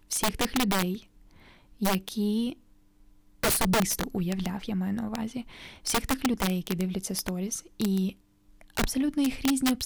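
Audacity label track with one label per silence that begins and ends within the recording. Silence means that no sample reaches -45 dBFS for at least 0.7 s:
2.540000	3.430000	silence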